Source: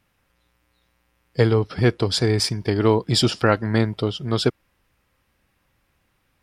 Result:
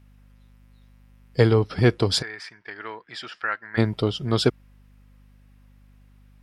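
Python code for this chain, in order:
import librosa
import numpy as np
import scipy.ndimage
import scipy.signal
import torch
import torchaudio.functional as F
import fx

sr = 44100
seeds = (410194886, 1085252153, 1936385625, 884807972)

y = fx.add_hum(x, sr, base_hz=50, snr_db=30)
y = fx.bandpass_q(y, sr, hz=1700.0, q=3.2, at=(2.21, 3.77), fade=0.02)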